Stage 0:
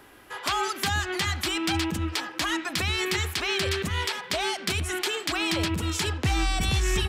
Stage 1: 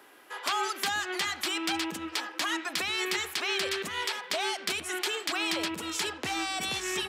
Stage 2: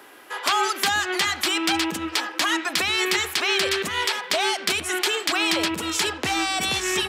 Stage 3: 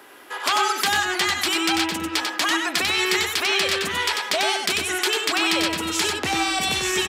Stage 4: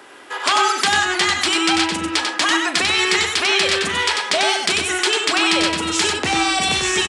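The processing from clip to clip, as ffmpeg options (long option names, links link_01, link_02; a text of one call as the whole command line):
ffmpeg -i in.wav -af "highpass=330,volume=-2.5dB" out.wav
ffmpeg -i in.wav -af "equalizer=frequency=73:width=2.1:gain=4.5,volume=8dB" out.wav
ffmpeg -i in.wav -af "aecho=1:1:94:0.596" out.wav
ffmpeg -i in.wav -filter_complex "[0:a]asplit=2[link_01][link_02];[link_02]adelay=39,volume=-12.5dB[link_03];[link_01][link_03]amix=inputs=2:normalize=0,aresample=22050,aresample=44100,volume=4dB" out.wav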